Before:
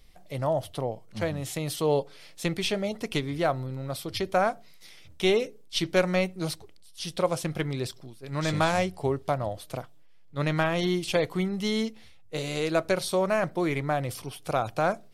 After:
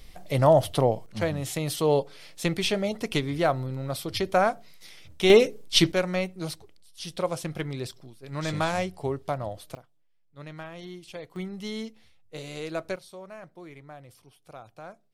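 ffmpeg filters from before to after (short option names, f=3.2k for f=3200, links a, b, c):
-af "asetnsamples=n=441:p=0,asendcmd='1.06 volume volume 2dB;5.3 volume volume 8.5dB;5.92 volume volume -2.5dB;9.75 volume volume -15dB;11.36 volume volume -7dB;12.96 volume volume -18dB',volume=8.5dB"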